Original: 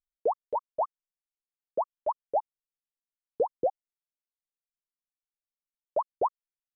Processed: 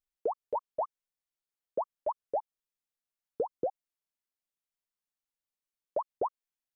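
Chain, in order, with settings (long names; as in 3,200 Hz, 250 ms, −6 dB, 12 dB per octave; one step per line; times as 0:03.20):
downward compressor, threshold −28 dBFS, peak gain reduction 7 dB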